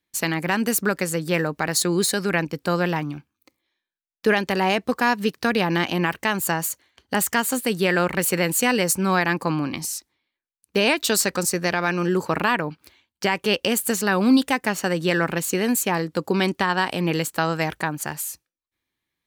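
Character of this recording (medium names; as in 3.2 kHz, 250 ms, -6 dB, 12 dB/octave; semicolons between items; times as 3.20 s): noise floor -86 dBFS; spectral tilt -4.0 dB/octave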